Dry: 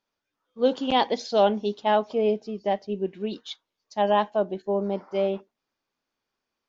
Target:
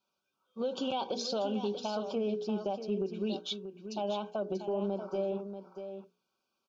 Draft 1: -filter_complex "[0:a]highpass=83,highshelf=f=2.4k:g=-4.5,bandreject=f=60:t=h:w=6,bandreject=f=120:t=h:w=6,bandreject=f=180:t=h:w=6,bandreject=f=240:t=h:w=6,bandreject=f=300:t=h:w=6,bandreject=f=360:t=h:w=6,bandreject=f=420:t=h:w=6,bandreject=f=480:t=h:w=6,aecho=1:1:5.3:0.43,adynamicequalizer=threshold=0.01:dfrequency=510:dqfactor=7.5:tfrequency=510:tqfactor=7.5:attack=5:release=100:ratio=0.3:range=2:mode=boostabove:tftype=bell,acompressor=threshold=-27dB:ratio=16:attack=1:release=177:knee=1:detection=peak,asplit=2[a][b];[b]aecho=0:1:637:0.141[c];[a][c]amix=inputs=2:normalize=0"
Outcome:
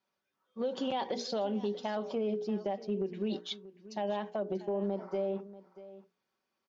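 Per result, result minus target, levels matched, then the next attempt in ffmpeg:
echo-to-direct -7.5 dB; 4000 Hz band -3.0 dB; 2000 Hz band +2.5 dB
-filter_complex "[0:a]highpass=83,highshelf=f=2.4k:g=-4.5,bandreject=f=60:t=h:w=6,bandreject=f=120:t=h:w=6,bandreject=f=180:t=h:w=6,bandreject=f=240:t=h:w=6,bandreject=f=300:t=h:w=6,bandreject=f=360:t=h:w=6,bandreject=f=420:t=h:w=6,bandreject=f=480:t=h:w=6,aecho=1:1:5.3:0.43,adynamicequalizer=threshold=0.01:dfrequency=510:dqfactor=7.5:tfrequency=510:tqfactor=7.5:attack=5:release=100:ratio=0.3:range=2:mode=boostabove:tftype=bell,acompressor=threshold=-27dB:ratio=16:attack=1:release=177:knee=1:detection=peak,asplit=2[a][b];[b]aecho=0:1:637:0.335[c];[a][c]amix=inputs=2:normalize=0"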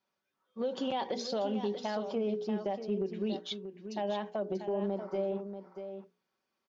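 2000 Hz band +3.0 dB; 4000 Hz band -2.5 dB
-filter_complex "[0:a]highpass=83,highshelf=f=2.4k:g=-4.5,bandreject=f=60:t=h:w=6,bandreject=f=120:t=h:w=6,bandreject=f=180:t=h:w=6,bandreject=f=240:t=h:w=6,bandreject=f=300:t=h:w=6,bandreject=f=360:t=h:w=6,bandreject=f=420:t=h:w=6,bandreject=f=480:t=h:w=6,aecho=1:1:5.3:0.43,adynamicequalizer=threshold=0.01:dfrequency=510:dqfactor=7.5:tfrequency=510:tqfactor=7.5:attack=5:release=100:ratio=0.3:range=2:mode=boostabove:tftype=bell,acompressor=threshold=-27dB:ratio=16:attack=1:release=177:knee=1:detection=peak,asuperstop=centerf=1900:order=20:qfactor=2.8,asplit=2[a][b];[b]aecho=0:1:637:0.335[c];[a][c]amix=inputs=2:normalize=0"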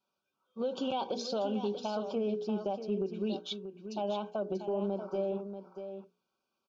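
4000 Hz band -2.5 dB
-filter_complex "[0:a]highpass=83,bandreject=f=60:t=h:w=6,bandreject=f=120:t=h:w=6,bandreject=f=180:t=h:w=6,bandreject=f=240:t=h:w=6,bandreject=f=300:t=h:w=6,bandreject=f=360:t=h:w=6,bandreject=f=420:t=h:w=6,bandreject=f=480:t=h:w=6,aecho=1:1:5.3:0.43,adynamicequalizer=threshold=0.01:dfrequency=510:dqfactor=7.5:tfrequency=510:tqfactor=7.5:attack=5:release=100:ratio=0.3:range=2:mode=boostabove:tftype=bell,acompressor=threshold=-27dB:ratio=16:attack=1:release=177:knee=1:detection=peak,asuperstop=centerf=1900:order=20:qfactor=2.8,asplit=2[a][b];[b]aecho=0:1:637:0.335[c];[a][c]amix=inputs=2:normalize=0"

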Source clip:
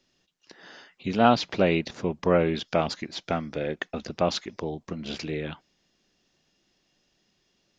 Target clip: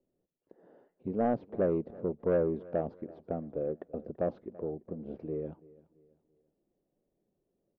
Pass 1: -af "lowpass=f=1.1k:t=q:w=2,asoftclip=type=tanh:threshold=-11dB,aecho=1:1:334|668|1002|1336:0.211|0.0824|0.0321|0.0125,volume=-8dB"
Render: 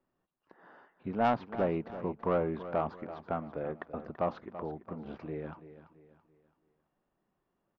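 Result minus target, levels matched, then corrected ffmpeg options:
1000 Hz band +7.5 dB; echo-to-direct +8 dB
-af "lowpass=f=510:t=q:w=2,asoftclip=type=tanh:threshold=-11dB,aecho=1:1:334|668|1002:0.0841|0.0328|0.0128,volume=-8dB"

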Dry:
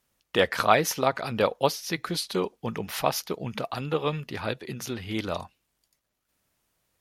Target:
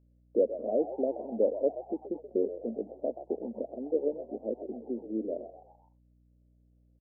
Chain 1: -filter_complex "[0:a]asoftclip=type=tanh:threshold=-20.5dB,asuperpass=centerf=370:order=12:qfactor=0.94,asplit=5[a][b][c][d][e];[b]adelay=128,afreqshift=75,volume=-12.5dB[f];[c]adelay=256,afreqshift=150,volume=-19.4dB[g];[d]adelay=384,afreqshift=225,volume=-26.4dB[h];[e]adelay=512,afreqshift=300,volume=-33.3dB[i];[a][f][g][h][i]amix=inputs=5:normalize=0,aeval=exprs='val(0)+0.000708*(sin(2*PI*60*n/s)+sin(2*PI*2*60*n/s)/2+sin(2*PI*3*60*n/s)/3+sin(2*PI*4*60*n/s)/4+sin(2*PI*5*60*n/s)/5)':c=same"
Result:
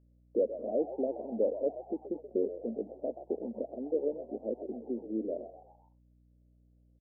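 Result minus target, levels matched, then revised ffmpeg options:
soft clip: distortion +7 dB
-filter_complex "[0:a]asoftclip=type=tanh:threshold=-12.5dB,asuperpass=centerf=370:order=12:qfactor=0.94,asplit=5[a][b][c][d][e];[b]adelay=128,afreqshift=75,volume=-12.5dB[f];[c]adelay=256,afreqshift=150,volume=-19.4dB[g];[d]adelay=384,afreqshift=225,volume=-26.4dB[h];[e]adelay=512,afreqshift=300,volume=-33.3dB[i];[a][f][g][h][i]amix=inputs=5:normalize=0,aeval=exprs='val(0)+0.000708*(sin(2*PI*60*n/s)+sin(2*PI*2*60*n/s)/2+sin(2*PI*3*60*n/s)/3+sin(2*PI*4*60*n/s)/4+sin(2*PI*5*60*n/s)/5)':c=same"

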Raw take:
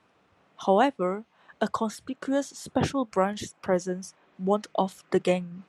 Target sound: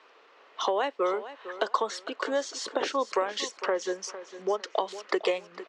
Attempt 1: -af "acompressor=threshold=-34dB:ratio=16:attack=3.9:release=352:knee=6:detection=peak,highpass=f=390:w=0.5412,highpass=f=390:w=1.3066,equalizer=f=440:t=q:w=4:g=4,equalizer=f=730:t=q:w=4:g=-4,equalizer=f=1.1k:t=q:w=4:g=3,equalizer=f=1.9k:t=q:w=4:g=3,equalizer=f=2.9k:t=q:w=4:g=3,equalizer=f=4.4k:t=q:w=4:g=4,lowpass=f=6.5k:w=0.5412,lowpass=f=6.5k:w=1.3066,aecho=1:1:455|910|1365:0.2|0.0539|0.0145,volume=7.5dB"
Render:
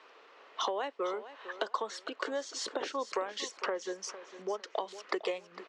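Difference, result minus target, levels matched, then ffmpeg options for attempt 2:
compressor: peak gain reduction +7.5 dB
-af "acompressor=threshold=-26dB:ratio=16:attack=3.9:release=352:knee=6:detection=peak,highpass=f=390:w=0.5412,highpass=f=390:w=1.3066,equalizer=f=440:t=q:w=4:g=4,equalizer=f=730:t=q:w=4:g=-4,equalizer=f=1.1k:t=q:w=4:g=3,equalizer=f=1.9k:t=q:w=4:g=3,equalizer=f=2.9k:t=q:w=4:g=3,equalizer=f=4.4k:t=q:w=4:g=4,lowpass=f=6.5k:w=0.5412,lowpass=f=6.5k:w=1.3066,aecho=1:1:455|910|1365:0.2|0.0539|0.0145,volume=7.5dB"

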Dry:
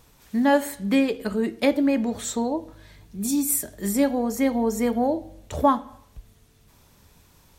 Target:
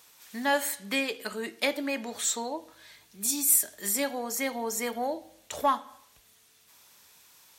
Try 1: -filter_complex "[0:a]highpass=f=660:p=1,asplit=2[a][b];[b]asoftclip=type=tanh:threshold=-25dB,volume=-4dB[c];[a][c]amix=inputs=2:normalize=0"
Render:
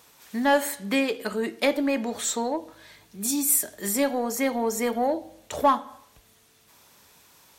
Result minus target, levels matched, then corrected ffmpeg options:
500 Hz band +4.0 dB
-filter_complex "[0:a]highpass=f=2k:p=1,asplit=2[a][b];[b]asoftclip=type=tanh:threshold=-25dB,volume=-4dB[c];[a][c]amix=inputs=2:normalize=0"

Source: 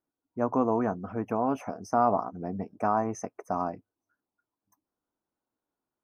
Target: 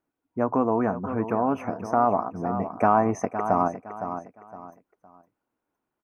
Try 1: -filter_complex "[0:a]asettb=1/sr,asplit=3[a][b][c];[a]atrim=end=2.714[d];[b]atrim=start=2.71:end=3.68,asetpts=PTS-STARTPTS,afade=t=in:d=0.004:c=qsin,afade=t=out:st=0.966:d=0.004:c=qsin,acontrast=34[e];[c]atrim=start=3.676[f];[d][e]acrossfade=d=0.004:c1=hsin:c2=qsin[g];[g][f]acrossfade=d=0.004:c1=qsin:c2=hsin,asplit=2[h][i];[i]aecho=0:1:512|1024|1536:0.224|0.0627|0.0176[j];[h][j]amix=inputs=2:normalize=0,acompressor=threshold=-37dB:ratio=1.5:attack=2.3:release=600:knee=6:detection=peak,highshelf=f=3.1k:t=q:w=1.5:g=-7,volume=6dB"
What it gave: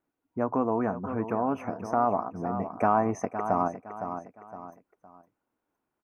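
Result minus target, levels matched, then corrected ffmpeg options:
compressor: peak gain reduction +3.5 dB
-filter_complex "[0:a]asettb=1/sr,asplit=3[a][b][c];[a]atrim=end=2.714[d];[b]atrim=start=2.71:end=3.68,asetpts=PTS-STARTPTS,afade=t=in:d=0.004:c=qsin,afade=t=out:st=0.966:d=0.004:c=qsin,acontrast=34[e];[c]atrim=start=3.676[f];[d][e]acrossfade=d=0.004:c1=hsin:c2=qsin[g];[g][f]acrossfade=d=0.004:c1=qsin:c2=hsin,asplit=2[h][i];[i]aecho=0:1:512|1024|1536:0.224|0.0627|0.0176[j];[h][j]amix=inputs=2:normalize=0,acompressor=threshold=-26dB:ratio=1.5:attack=2.3:release=600:knee=6:detection=peak,highshelf=f=3.1k:t=q:w=1.5:g=-7,volume=6dB"

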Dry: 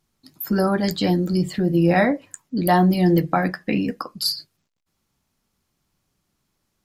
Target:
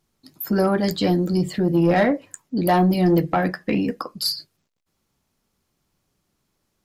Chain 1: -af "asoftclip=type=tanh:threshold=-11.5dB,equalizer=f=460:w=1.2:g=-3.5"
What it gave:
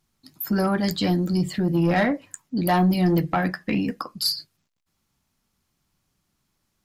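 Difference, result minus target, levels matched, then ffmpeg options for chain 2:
500 Hz band -3.0 dB
-af "asoftclip=type=tanh:threshold=-11.5dB,equalizer=f=460:w=1.2:g=3.5"

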